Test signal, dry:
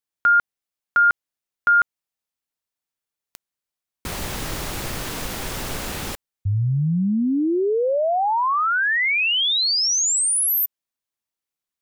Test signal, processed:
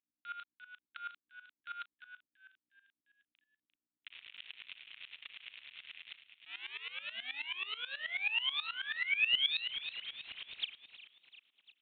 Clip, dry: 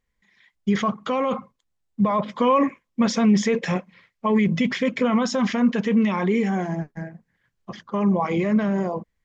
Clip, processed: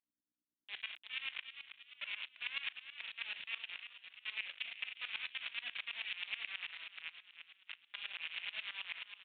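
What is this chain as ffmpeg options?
-filter_complex "[0:a]areverse,acompressor=threshold=-29dB:ratio=12:attack=0.11:release=165:knee=1:detection=rms,areverse,acrusher=bits=4:mix=0:aa=0.000001,aeval=exprs='val(0)+0.00631*(sin(2*PI*60*n/s)+sin(2*PI*2*60*n/s)/2+sin(2*PI*3*60*n/s)/3+sin(2*PI*4*60*n/s)/4+sin(2*PI*5*60*n/s)/5)':c=same,highpass=f=2.6k:t=q:w=2.9,acrusher=bits=4:mode=log:mix=0:aa=0.000001,asoftclip=type=tanh:threshold=-16.5dB,asplit=2[a][b];[b]adelay=37,volume=-7dB[c];[a][c]amix=inputs=2:normalize=0,asplit=6[d][e][f][g][h][i];[e]adelay=348,afreqshift=63,volume=-10dB[j];[f]adelay=696,afreqshift=126,volume=-16.6dB[k];[g]adelay=1044,afreqshift=189,volume=-23.1dB[l];[h]adelay=1392,afreqshift=252,volume=-29.7dB[m];[i]adelay=1740,afreqshift=315,volume=-36.2dB[n];[d][j][k][l][m][n]amix=inputs=6:normalize=0,aresample=8000,aresample=44100,aeval=exprs='val(0)*pow(10,-18*if(lt(mod(-9.3*n/s,1),2*abs(-9.3)/1000),1-mod(-9.3*n/s,1)/(2*abs(-9.3)/1000),(mod(-9.3*n/s,1)-2*abs(-9.3)/1000)/(1-2*abs(-9.3)/1000))/20)':c=same,volume=-2.5dB"

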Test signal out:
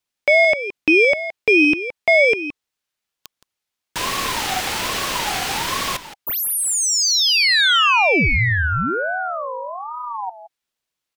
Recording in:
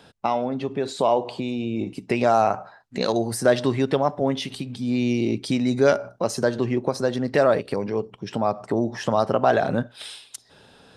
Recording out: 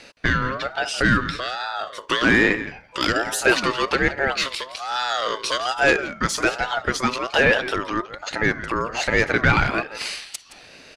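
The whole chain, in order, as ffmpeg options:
-filter_complex "[0:a]asubboost=boost=5:cutoff=66,acrossover=split=110|1200[a][b][c];[c]acontrast=34[d];[a][b][d]amix=inputs=3:normalize=0,asplit=2[e][f];[f]highpass=f=720:p=1,volume=14dB,asoftclip=type=tanh:threshold=-3.5dB[g];[e][g]amix=inputs=2:normalize=0,lowpass=f=4k:p=1,volume=-6dB,asplit=2[h][i];[i]adelay=169.1,volume=-13dB,highshelf=f=4k:g=-3.8[j];[h][j]amix=inputs=2:normalize=0,aeval=exprs='val(0)*sin(2*PI*930*n/s+930*0.2/1.2*sin(2*PI*1.2*n/s))':c=same"

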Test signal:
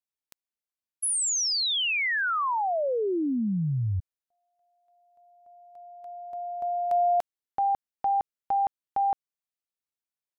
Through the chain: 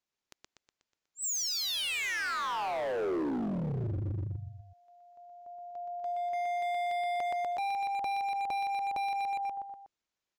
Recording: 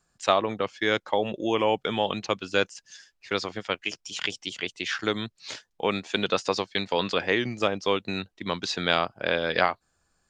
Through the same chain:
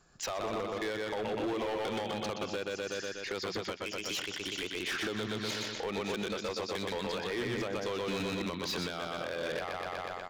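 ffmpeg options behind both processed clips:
-filter_complex "[0:a]aresample=16000,aresample=44100,highshelf=f=5.5k:g=-3.5,asplit=2[a][b];[b]aecho=0:1:122|244|366|488|610|732:0.562|0.287|0.146|0.0746|0.038|0.0194[c];[a][c]amix=inputs=2:normalize=0,acompressor=threshold=-30dB:ratio=16:attack=0.41:release=307:knee=6:detection=peak,asoftclip=type=hard:threshold=-38.5dB,equalizer=f=370:t=o:w=0.7:g=3,volume=7dB"

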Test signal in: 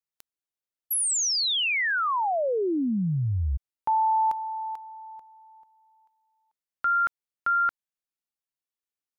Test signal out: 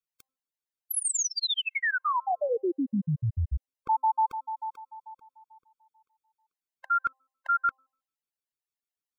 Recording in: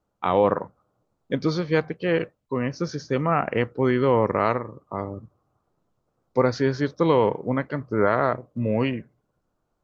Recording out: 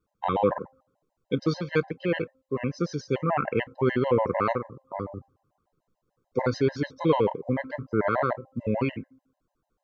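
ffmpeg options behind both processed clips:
-af "bandreject=f=263.4:t=h:w=4,bandreject=f=526.8:t=h:w=4,bandreject=f=790.2:t=h:w=4,bandreject=f=1.0536k:t=h:w=4,bandreject=f=1.317k:t=h:w=4,afftfilt=real='re*gt(sin(2*PI*6.8*pts/sr)*(1-2*mod(floor(b*sr/1024/530),2)),0)':imag='im*gt(sin(2*PI*6.8*pts/sr)*(1-2*mod(floor(b*sr/1024/530),2)),0)':win_size=1024:overlap=0.75"

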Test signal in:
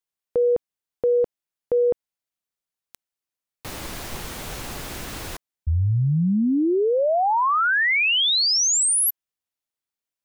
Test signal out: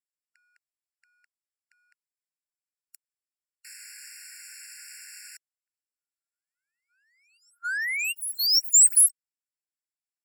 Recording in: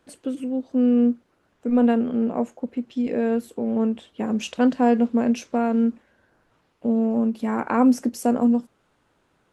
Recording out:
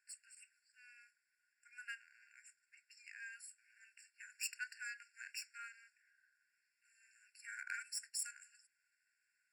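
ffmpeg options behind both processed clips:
-af "adynamicsmooth=sensitivity=3.5:basefreq=5k,aexciter=amount=6.8:drive=6.3:freq=5.6k,afftfilt=real='re*eq(mod(floor(b*sr/1024/1400),2),1)':imag='im*eq(mod(floor(b*sr/1024/1400),2),1)':win_size=1024:overlap=0.75,volume=-8.5dB"

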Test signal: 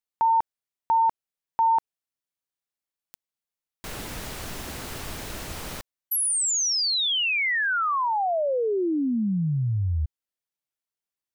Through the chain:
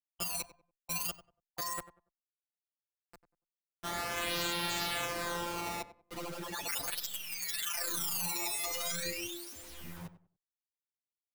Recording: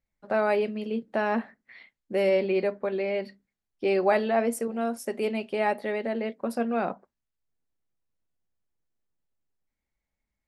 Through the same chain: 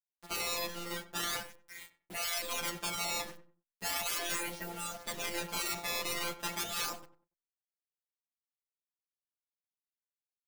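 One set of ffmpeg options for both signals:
-filter_complex "[0:a]aeval=exprs='0.299*(cos(1*acos(clip(val(0)/0.299,-1,1)))-cos(1*PI/2))+0.0596*(cos(2*acos(clip(val(0)/0.299,-1,1)))-cos(2*PI/2))+0.00299*(cos(3*acos(clip(val(0)/0.299,-1,1)))-cos(3*PI/2))':c=same,highshelf=f=5.9k:t=q:w=3:g=-14,dynaudnorm=f=980:g=5:m=5dB,acrusher=samples=16:mix=1:aa=0.000001:lfo=1:lforange=25.6:lforate=0.38,afftfilt=real='hypot(re,im)*cos(PI*b)':imag='0':win_size=1024:overlap=0.75,acrusher=bits=7:mix=0:aa=0.000001,afftfilt=real='re*lt(hypot(re,im),0.0794)':imag='im*lt(hypot(re,im),0.0794)':win_size=1024:overlap=0.75,asplit=2[a][b];[b]adelay=95,lowpass=f=1.4k:p=1,volume=-12.5dB,asplit=2[c][d];[d]adelay=95,lowpass=f=1.4k:p=1,volume=0.27,asplit=2[e][f];[f]adelay=95,lowpass=f=1.4k:p=1,volume=0.27[g];[a][c][e][g]amix=inputs=4:normalize=0,alimiter=level_in=12.5dB:limit=-1dB:release=50:level=0:latency=1,asplit=2[h][i];[i]adelay=9.1,afreqshift=1.1[j];[h][j]amix=inputs=2:normalize=1,volume=-8.5dB"

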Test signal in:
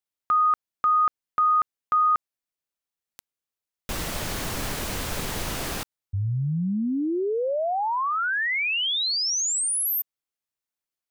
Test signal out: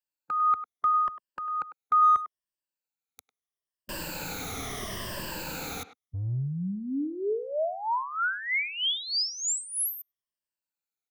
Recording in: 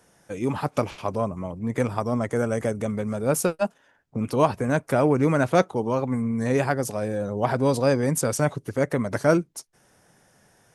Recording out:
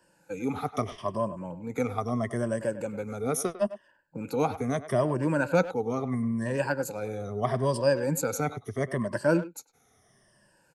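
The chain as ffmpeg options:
-filter_complex "[0:a]afftfilt=real='re*pow(10,15/40*sin(2*PI*(1.3*log(max(b,1)*sr/1024/100)/log(2)-(-0.76)*(pts-256)/sr)))':imag='im*pow(10,15/40*sin(2*PI*(1.3*log(max(b,1)*sr/1024/100)/log(2)-(-0.76)*(pts-256)/sr)))':win_size=1024:overlap=0.75,adynamicequalizer=threshold=0.00631:dfrequency=9100:dqfactor=2.3:tfrequency=9100:tqfactor=2.3:attack=5:release=100:ratio=0.417:range=2:mode=cutabove:tftype=bell,acrossover=split=100|930|2900[a][b][c][d];[a]asoftclip=type=tanh:threshold=-35dB[e];[e][b][c][d]amix=inputs=4:normalize=0,asplit=2[f][g];[g]adelay=100,highpass=300,lowpass=3.4k,asoftclip=type=hard:threshold=-10.5dB,volume=-13dB[h];[f][h]amix=inputs=2:normalize=0,volume=-7.5dB"

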